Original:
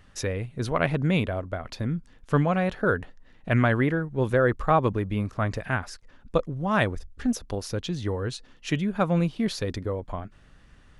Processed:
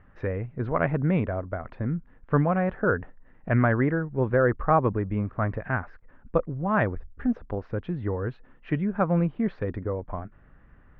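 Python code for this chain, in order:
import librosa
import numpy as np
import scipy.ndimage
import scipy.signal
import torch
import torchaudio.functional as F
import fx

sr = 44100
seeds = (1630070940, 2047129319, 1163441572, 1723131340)

y = scipy.signal.sosfilt(scipy.signal.butter(4, 1900.0, 'lowpass', fs=sr, output='sos'), x)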